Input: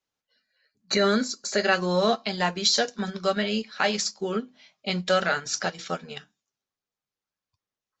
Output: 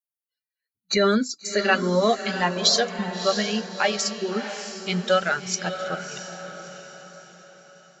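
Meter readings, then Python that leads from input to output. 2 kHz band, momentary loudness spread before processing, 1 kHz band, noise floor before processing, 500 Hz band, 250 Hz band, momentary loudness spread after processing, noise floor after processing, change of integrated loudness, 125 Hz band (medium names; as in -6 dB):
+2.0 dB, 11 LU, +2.0 dB, under -85 dBFS, +2.5 dB, +2.0 dB, 17 LU, under -85 dBFS, +2.0 dB, +2.5 dB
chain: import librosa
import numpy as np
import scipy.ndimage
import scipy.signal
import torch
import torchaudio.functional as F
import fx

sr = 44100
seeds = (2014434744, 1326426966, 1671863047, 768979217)

y = fx.bin_expand(x, sr, power=1.5)
y = fx.echo_diffused(y, sr, ms=649, feedback_pct=44, wet_db=-9)
y = y * librosa.db_to_amplitude(4.0)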